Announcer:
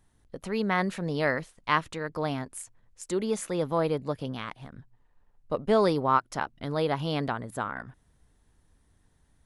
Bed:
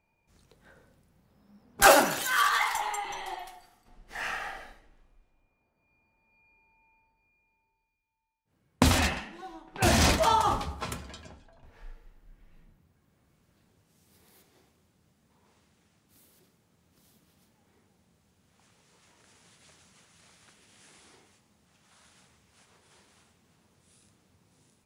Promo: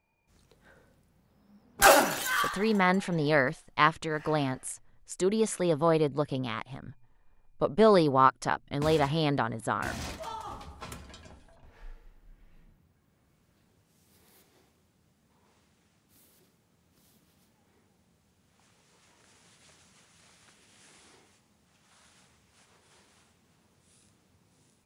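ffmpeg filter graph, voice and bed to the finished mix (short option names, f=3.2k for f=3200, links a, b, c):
-filter_complex "[0:a]adelay=2100,volume=2dB[a];[1:a]volume=14.5dB,afade=t=out:st=2.32:d=0.26:silence=0.177828,afade=t=in:st=10.46:d=1.12:silence=0.16788[b];[a][b]amix=inputs=2:normalize=0"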